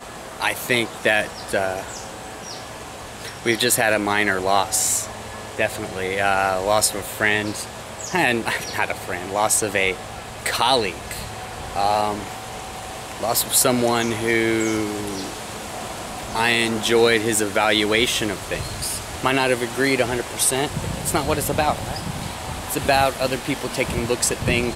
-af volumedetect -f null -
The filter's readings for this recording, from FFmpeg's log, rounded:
mean_volume: -22.4 dB
max_volume: -3.2 dB